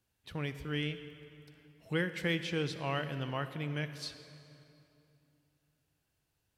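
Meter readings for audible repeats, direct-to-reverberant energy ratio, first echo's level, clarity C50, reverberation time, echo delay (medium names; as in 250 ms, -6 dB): no echo, 10.5 dB, no echo, 11.0 dB, 2.8 s, no echo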